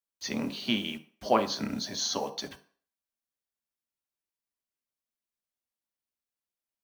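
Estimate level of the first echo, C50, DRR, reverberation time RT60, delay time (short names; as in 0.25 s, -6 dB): none, 15.0 dB, 5.0 dB, 0.45 s, none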